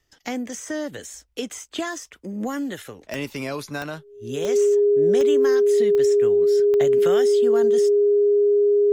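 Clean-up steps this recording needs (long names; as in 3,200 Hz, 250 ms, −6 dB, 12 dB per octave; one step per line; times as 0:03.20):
click removal
notch filter 410 Hz, Q 30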